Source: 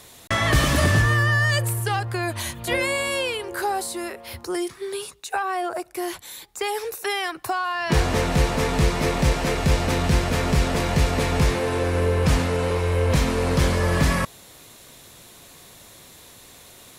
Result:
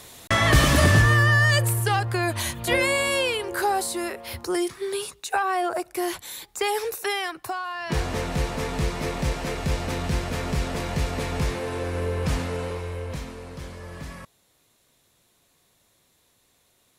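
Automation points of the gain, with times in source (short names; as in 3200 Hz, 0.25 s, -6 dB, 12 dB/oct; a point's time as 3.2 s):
6.86 s +1.5 dB
7.64 s -6 dB
12.57 s -6 dB
13.52 s -18 dB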